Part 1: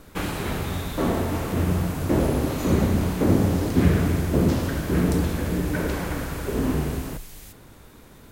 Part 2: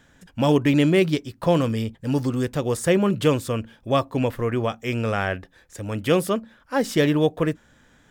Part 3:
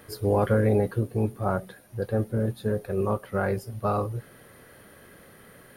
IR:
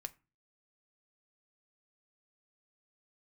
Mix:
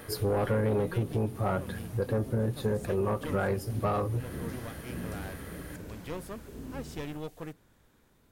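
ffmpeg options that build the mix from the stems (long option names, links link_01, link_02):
-filter_complex "[0:a]acrossover=split=370|3000[link_01][link_02][link_03];[link_02]acompressor=threshold=-39dB:ratio=2[link_04];[link_01][link_04][link_03]amix=inputs=3:normalize=0,volume=-17.5dB[link_05];[1:a]aeval=exprs='clip(val(0),-1,0.0596)':channel_layout=same,volume=-17dB[link_06];[2:a]volume=2.5dB,asplit=2[link_07][link_08];[link_08]volume=-7.5dB[link_09];[3:a]atrim=start_sample=2205[link_10];[link_09][link_10]afir=irnorm=-1:irlink=0[link_11];[link_05][link_06][link_07][link_11]amix=inputs=4:normalize=0,asoftclip=type=tanh:threshold=-14dB,acompressor=threshold=-28dB:ratio=2.5"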